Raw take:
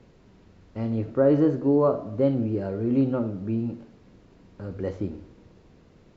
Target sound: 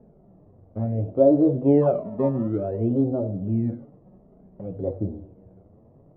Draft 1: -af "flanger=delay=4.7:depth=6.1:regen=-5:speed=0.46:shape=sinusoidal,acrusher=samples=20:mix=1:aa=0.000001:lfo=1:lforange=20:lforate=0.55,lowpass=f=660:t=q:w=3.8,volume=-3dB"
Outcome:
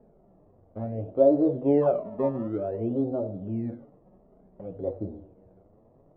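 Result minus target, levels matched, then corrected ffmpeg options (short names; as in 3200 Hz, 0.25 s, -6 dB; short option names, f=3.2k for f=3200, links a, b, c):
125 Hz band -5.0 dB
-af "flanger=delay=4.7:depth=6.1:regen=-5:speed=0.46:shape=sinusoidal,acrusher=samples=20:mix=1:aa=0.000001:lfo=1:lforange=20:lforate=0.55,lowpass=f=660:t=q:w=3.8,equalizer=f=120:w=0.45:g=9,volume=-3dB"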